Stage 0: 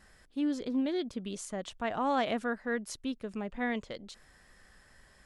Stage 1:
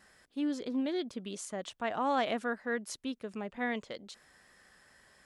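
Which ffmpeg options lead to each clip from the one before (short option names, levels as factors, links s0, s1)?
-af "highpass=f=220:p=1"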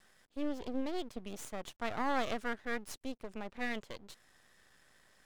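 -af "aeval=exprs='max(val(0),0)':c=same"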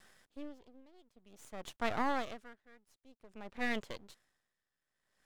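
-af "aeval=exprs='val(0)*pow(10,-28*(0.5-0.5*cos(2*PI*0.53*n/s))/20)':c=same,volume=1.41"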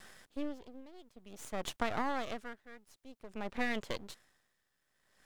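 -af "acompressor=threshold=0.0141:ratio=6,volume=2.51"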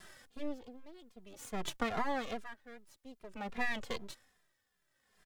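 -filter_complex "[0:a]asplit=2[s0][s1];[s1]adelay=2.5,afreqshift=-2.5[s2];[s0][s2]amix=inputs=2:normalize=1,volume=1.41"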